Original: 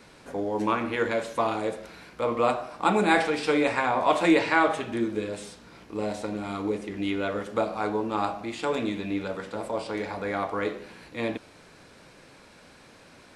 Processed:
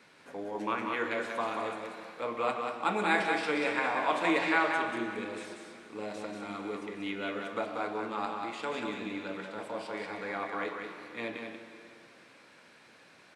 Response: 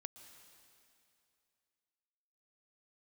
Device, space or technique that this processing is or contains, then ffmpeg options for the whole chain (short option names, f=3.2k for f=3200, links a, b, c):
PA in a hall: -filter_complex "[0:a]highpass=140,equalizer=f=2k:t=o:w=1.9:g=6.5,aecho=1:1:187:0.562[a];[1:a]atrim=start_sample=2205[b];[a][b]afir=irnorm=-1:irlink=0,volume=-4.5dB"